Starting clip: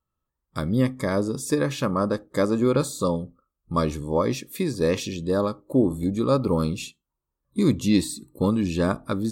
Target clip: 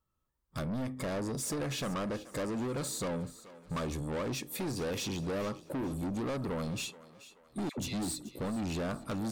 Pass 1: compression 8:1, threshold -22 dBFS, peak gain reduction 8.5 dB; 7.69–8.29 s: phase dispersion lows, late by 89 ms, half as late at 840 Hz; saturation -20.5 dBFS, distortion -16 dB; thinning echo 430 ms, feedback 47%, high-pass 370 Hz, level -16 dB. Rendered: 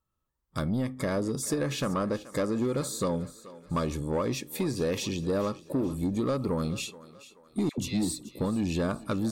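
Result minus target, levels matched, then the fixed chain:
saturation: distortion -10 dB
compression 8:1, threshold -22 dBFS, peak gain reduction 8.5 dB; 7.69–8.29 s: phase dispersion lows, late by 89 ms, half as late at 840 Hz; saturation -32 dBFS, distortion -6 dB; thinning echo 430 ms, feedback 47%, high-pass 370 Hz, level -16 dB

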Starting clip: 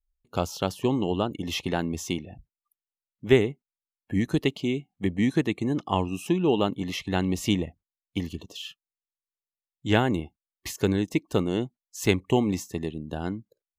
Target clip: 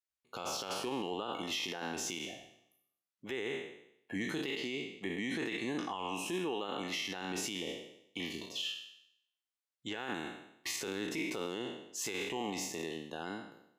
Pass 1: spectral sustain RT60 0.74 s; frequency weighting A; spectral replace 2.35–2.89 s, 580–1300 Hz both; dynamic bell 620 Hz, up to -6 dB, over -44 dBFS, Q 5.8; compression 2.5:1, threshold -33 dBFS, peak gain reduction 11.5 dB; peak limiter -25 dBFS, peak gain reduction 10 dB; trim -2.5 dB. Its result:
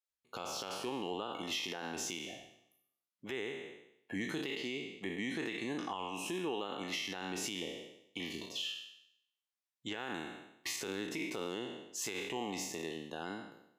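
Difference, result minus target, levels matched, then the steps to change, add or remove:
compression: peak gain reduction +11.5 dB
remove: compression 2.5:1, threshold -33 dBFS, peak gain reduction 11.5 dB

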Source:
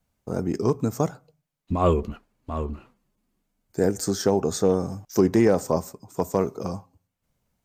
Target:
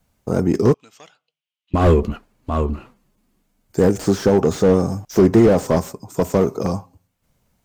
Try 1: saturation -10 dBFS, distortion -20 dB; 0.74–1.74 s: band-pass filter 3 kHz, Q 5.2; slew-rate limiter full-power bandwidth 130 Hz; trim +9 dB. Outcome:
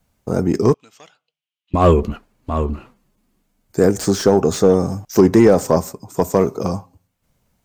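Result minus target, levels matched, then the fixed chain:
slew-rate limiter: distortion -14 dB
saturation -10 dBFS, distortion -20 dB; 0.74–1.74 s: band-pass filter 3 kHz, Q 5.2; slew-rate limiter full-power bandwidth 49 Hz; trim +9 dB

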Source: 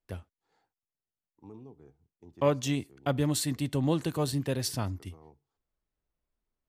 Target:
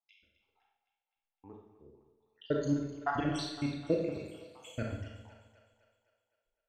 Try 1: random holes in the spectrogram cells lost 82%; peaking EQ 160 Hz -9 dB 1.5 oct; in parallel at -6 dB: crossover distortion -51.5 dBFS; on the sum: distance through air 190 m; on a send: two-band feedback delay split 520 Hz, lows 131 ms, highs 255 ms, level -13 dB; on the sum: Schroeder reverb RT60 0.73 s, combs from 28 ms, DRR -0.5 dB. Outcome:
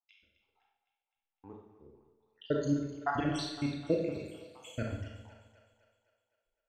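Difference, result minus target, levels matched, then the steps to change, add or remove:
crossover distortion: distortion -7 dB
change: crossover distortion -43 dBFS

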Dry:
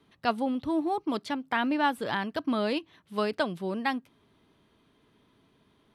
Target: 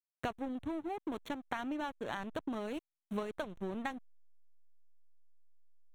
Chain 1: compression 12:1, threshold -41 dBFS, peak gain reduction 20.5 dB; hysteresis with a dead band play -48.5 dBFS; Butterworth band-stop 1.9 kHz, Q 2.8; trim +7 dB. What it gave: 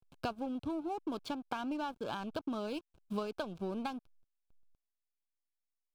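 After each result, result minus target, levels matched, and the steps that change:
hysteresis with a dead band: distortion -6 dB; 2 kHz band -4.0 dB
change: hysteresis with a dead band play -42.5 dBFS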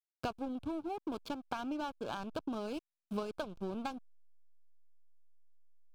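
2 kHz band -4.0 dB
change: Butterworth band-stop 4.9 kHz, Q 2.8

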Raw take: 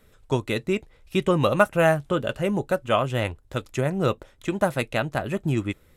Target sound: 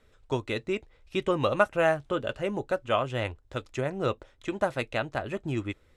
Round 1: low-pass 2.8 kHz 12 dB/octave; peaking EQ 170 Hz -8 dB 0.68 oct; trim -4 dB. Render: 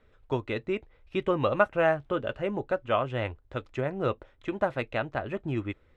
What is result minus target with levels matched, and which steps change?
8 kHz band -13.5 dB
change: low-pass 6.7 kHz 12 dB/octave

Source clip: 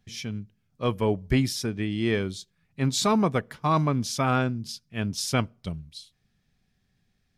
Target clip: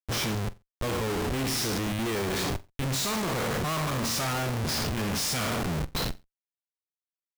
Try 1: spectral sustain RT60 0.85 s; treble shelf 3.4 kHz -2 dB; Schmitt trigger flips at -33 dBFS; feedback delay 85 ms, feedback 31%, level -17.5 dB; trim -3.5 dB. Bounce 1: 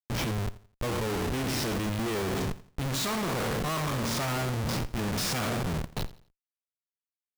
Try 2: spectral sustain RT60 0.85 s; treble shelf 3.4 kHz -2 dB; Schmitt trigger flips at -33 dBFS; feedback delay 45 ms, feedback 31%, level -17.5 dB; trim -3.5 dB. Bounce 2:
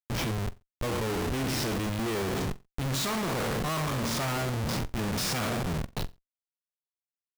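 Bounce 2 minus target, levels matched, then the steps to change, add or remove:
8 kHz band -2.5 dB
change: treble shelf 3.4 kHz +6.5 dB

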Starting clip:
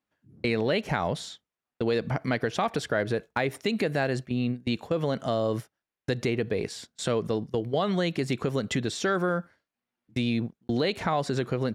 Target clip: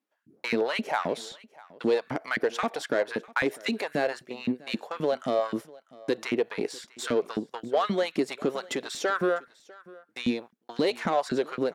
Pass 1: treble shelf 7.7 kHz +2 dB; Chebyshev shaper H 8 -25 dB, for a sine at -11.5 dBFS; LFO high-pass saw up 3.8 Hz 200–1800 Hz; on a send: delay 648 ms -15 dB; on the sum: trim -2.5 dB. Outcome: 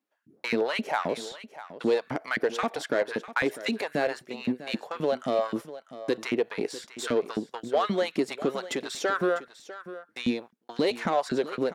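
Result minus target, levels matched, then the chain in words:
echo-to-direct +7.5 dB
treble shelf 7.7 kHz +2 dB; Chebyshev shaper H 8 -25 dB, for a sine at -11.5 dBFS; LFO high-pass saw up 3.8 Hz 200–1800 Hz; on a send: delay 648 ms -22.5 dB; on the sum: trim -2.5 dB

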